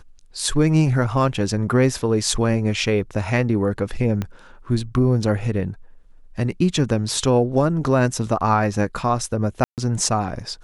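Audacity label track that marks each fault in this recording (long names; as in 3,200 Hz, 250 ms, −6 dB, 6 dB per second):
4.220000	4.220000	click −13 dBFS
9.640000	9.780000	drop-out 138 ms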